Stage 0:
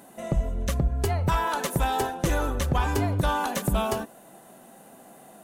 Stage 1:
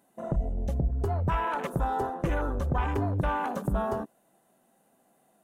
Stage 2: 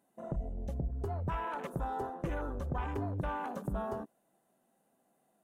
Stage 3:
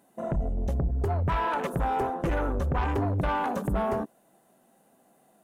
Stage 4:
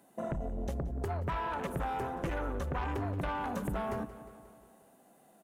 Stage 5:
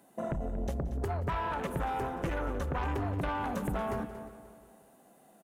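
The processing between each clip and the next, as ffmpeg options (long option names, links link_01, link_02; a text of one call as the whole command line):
ffmpeg -i in.wav -filter_complex "[0:a]afwtdn=0.0282,asplit=2[link_01][link_02];[link_02]alimiter=level_in=1.5dB:limit=-24dB:level=0:latency=1:release=30,volume=-1.5dB,volume=-2dB[link_03];[link_01][link_03]amix=inputs=2:normalize=0,volume=-5.5dB" out.wav
ffmpeg -i in.wav -af "equalizer=frequency=320:width=0.4:gain=2,volume=-9dB" out.wav
ffmpeg -i in.wav -af "aeval=exprs='0.0531*sin(PI/2*1.58*val(0)/0.0531)':channel_layout=same,volume=3.5dB" out.wav
ffmpeg -i in.wav -filter_complex "[0:a]aecho=1:1:178|356|534|712|890:0.106|0.0604|0.0344|0.0196|0.0112,acrossover=split=200|1300[link_01][link_02][link_03];[link_01]acompressor=threshold=-37dB:ratio=4[link_04];[link_02]acompressor=threshold=-37dB:ratio=4[link_05];[link_03]acompressor=threshold=-43dB:ratio=4[link_06];[link_04][link_05][link_06]amix=inputs=3:normalize=0" out.wav
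ffmpeg -i in.wav -af "aecho=1:1:233:0.211,volume=1.5dB" out.wav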